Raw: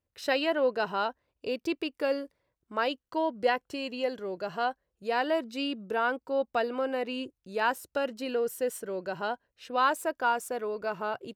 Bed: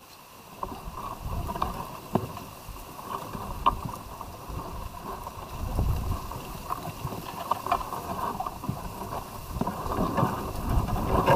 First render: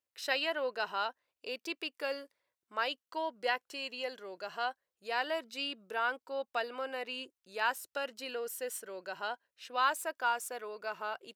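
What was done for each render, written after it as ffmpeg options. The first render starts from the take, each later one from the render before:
-af "highpass=f=1.4k:p=1"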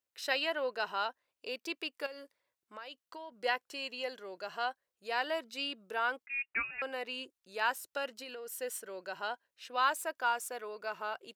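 -filter_complex "[0:a]asettb=1/sr,asplit=3[a][b][c];[a]atrim=end=2.064[d];[b]atrim=start=2.06:end=3.32,asetpts=PTS-STARTPTS,afade=t=in:d=0.004:c=qsin,afade=t=out:st=1.256:d=0.004:c=qsin,acompressor=threshold=-44dB:ratio=4:attack=3.2:release=140:knee=1:detection=peak[e];[c]atrim=start=3.316[f];[d][e]acrossfade=d=0.004:c1=hsin:c2=qsin[g];[g][f]acrossfade=d=0.004:c1=qsin:c2=hsin,asettb=1/sr,asplit=3[h][i][j];[h]atrim=end=6.264[k];[i]atrim=start=6.26:end=6.82,asetpts=PTS-STARTPTS,afade=t=in:d=0.004:c=qsin,afade=t=out:st=0.556:d=0.004:c=qsin,lowpass=f=2.6k:t=q:w=0.5098,lowpass=f=2.6k:t=q:w=0.6013,lowpass=f=2.6k:t=q:w=0.9,lowpass=f=2.6k:t=q:w=2.563,afreqshift=-3000[l];[j]atrim=start=6.816[m];[k][l]acrossfade=d=0.004:c1=hsin:c2=qsin[n];[n][m]acrossfade=d=0.004:c1=qsin:c2=hsin,asettb=1/sr,asplit=3[o][p][q];[o]atrim=end=8.064[r];[p]atrim=start=8.06:end=8.52,asetpts=PTS-STARTPTS,afade=t=in:d=0.004:c=qsin,afade=t=out:st=0.456:d=0.004:c=qsin,acompressor=threshold=-41dB:ratio=5:attack=3.2:release=140:knee=1:detection=peak[s];[q]atrim=start=8.516[t];[r][s]acrossfade=d=0.004:c1=hsin:c2=qsin[u];[u][t]acrossfade=d=0.004:c1=qsin:c2=hsin"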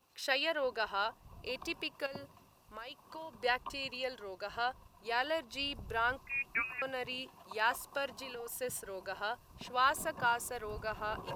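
-filter_complex "[1:a]volume=-22dB[a];[0:a][a]amix=inputs=2:normalize=0"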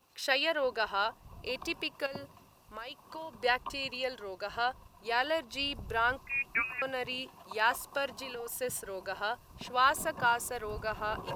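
-af "volume=3.5dB"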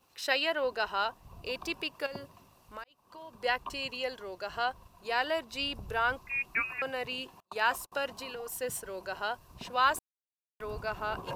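-filter_complex "[0:a]asettb=1/sr,asplit=3[a][b][c];[a]atrim=end=7.404[d];[b]atrim=start=7.4:end=7.92,asetpts=PTS-STARTPTS,afade=t=in:d=0.004:c=qsin,afade=t=out:st=0.516:d=0.004:c=qsin,agate=range=-32dB:threshold=-45dB:ratio=16:release=100:detection=peak[e];[c]atrim=start=7.916[f];[d][e]acrossfade=d=0.004:c1=hsin:c2=qsin[g];[g][f]acrossfade=d=0.004:c1=qsin:c2=hsin,asplit=4[h][i][j][k];[h]atrim=end=2.84,asetpts=PTS-STARTPTS,afade=t=out:st=2.836:d=0.004:c=hsin[l];[i]atrim=start=2.84:end=9.99,asetpts=PTS-STARTPTS,afade=t=in:d=0.99:c=qsin,afade=t=out:st=7.146:d=0.004:c=hsin[m];[j]atrim=start=9.99:end=10.6,asetpts=PTS-STARTPTS,volume=0[n];[k]atrim=start=10.6,asetpts=PTS-STARTPTS,afade=t=in:d=0.004:c=hsin[o];[l][m][n][o]concat=n=4:v=0:a=1"

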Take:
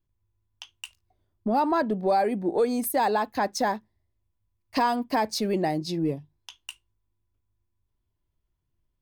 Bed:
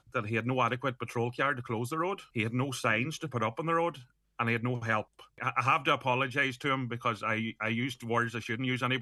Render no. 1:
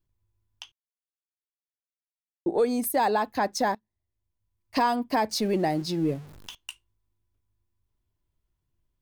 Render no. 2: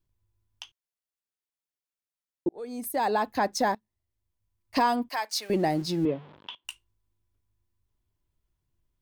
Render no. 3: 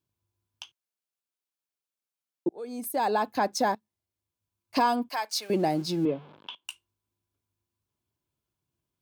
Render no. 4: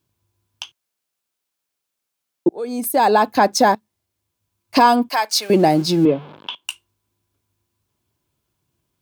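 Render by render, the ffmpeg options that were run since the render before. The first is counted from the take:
-filter_complex "[0:a]asettb=1/sr,asplit=3[a][b][c];[a]atrim=end=5.314[d];[b]atrim=start=5.31:end=6.55,asetpts=PTS-STARTPTS,afade=t=in:d=0.004:c=qsin,afade=t=out:st=1.236:d=0.004:c=qsin,aeval=exprs='val(0)+0.5*0.00794*sgn(val(0))':c=same[e];[c]atrim=start=6.546[f];[d][e]acrossfade=d=0.004:c1=hsin:c2=qsin[g];[g][f]acrossfade=d=0.004:c1=qsin:c2=hsin,asplit=4[h][i][j][k];[h]atrim=end=0.72,asetpts=PTS-STARTPTS,afade=t=out:st=0.716:d=0.004:c=hsin[l];[i]atrim=start=0.72:end=2.46,asetpts=PTS-STARTPTS,volume=0[m];[j]atrim=start=2.46:end=3.75,asetpts=PTS-STARTPTS,afade=t=in:d=0.004:c=hsin,afade=t=out:st=1.286:d=0.004:c=hsin:silence=0.0749894[n];[k]atrim=start=3.75,asetpts=PTS-STARTPTS,afade=t=in:d=1.02:silence=0.0749894[o];[l][m][n][o]concat=n=4:v=0:a=1"
-filter_complex "[0:a]asettb=1/sr,asplit=3[a][b][c];[a]atrim=end=5.094[d];[b]atrim=start=5.09:end=5.5,asetpts=PTS-STARTPTS,afade=t=in:d=0.004:c=qsin,afade=t=out:st=0.406:d=0.004:c=qsin,highpass=1.1k[e];[c]atrim=start=5.496[f];[d][e]acrossfade=d=0.004:c1=hsin:c2=qsin[g];[g][f]acrossfade=d=0.004:c1=qsin:c2=hsin,asettb=1/sr,asplit=3[h][i][j];[h]atrim=end=6.054[k];[i]atrim=start=6.05:end=6.65,asetpts=PTS-STARTPTS,afade=t=in:d=0.004:c=qsin,afade=t=out:st=0.596:d=0.004:c=qsin,highpass=190,equalizer=f=550:t=q:w=4:g=4,equalizer=f=970:t=q:w=4:g=7,equalizer=f=3.3k:t=q:w=4:g=6,lowpass=f=3.4k:w=0.5412,lowpass=f=3.4k:w=1.3066[l];[j]atrim=start=6.646[m];[k][l]acrossfade=d=0.004:c1=hsin:c2=qsin[n];[n][m]acrossfade=d=0.004:c1=qsin:c2=hsin,asplit=2[o][p];[o]atrim=end=2.49,asetpts=PTS-STARTPTS,afade=t=out:st=2.486:d=0.004:c=hsin[q];[p]atrim=start=2.49,asetpts=PTS-STARTPTS,afade=t=in:d=0.76[r];[q][r]concat=n=2:v=0:a=1"
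-af "highpass=130,bandreject=f=1.9k:w=7.8"
-af "volume=11.5dB,alimiter=limit=-3dB:level=0:latency=1"

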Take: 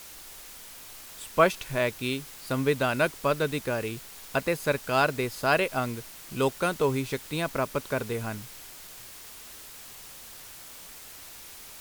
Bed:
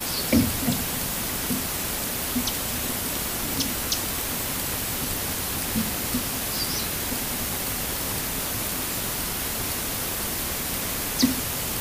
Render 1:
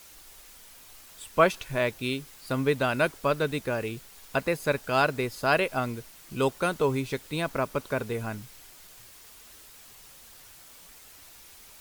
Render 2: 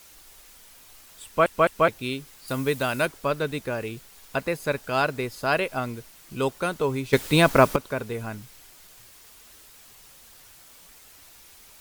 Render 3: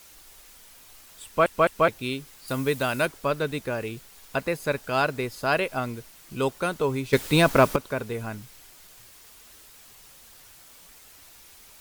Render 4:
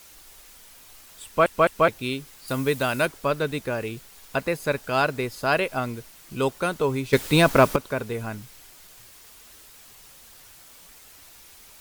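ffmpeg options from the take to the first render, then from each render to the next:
-af "afftdn=nr=6:nf=-46"
-filter_complex "[0:a]asettb=1/sr,asplit=3[a][b][c];[a]atrim=end=2.484[d];[b]atrim=start=2.48:end=3.06,asetpts=PTS-STARTPTS,afade=t=in:d=0.004:c=qsin,afade=t=out:st=0.576:d=0.004:c=qsin,aemphasis=mode=production:type=cd[e];[c]atrim=start=3.056[f];[d][e]acrossfade=d=0.004:c1=hsin:c2=qsin[g];[g][f]acrossfade=d=0.004:c1=qsin:c2=hsin,asplit=6[h][i][j][k][l][m];[h]atrim=end=1.462[n];[i]atrim=start=1.248:end=1.462[o];[j]atrim=start=1.248:end=1.462[p];[k]atrim=start=1.878:end=7.132[q];[l]atrim=start=7.128:end=7.762,asetpts=PTS-STARTPTS,volume=12dB[r];[m]atrim=start=7.758[s];[n][o]acrossfade=d=0.004:c1=hsin:c2=hsin[t];[t][p]acrossfade=d=0.004:c1=hsin:c2=hsin[u];[u][q]acrossfade=d=0.004:c1=hsin:c2=hsin[v];[v][r]acrossfade=d=0.004:c1=hsin:c2=hsin[w];[w][s]acrossfade=d=0.004:c1=hsin:c2=hsin"
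-af "asoftclip=type=tanh:threshold=-5.5dB"
-af "volume=1.5dB"

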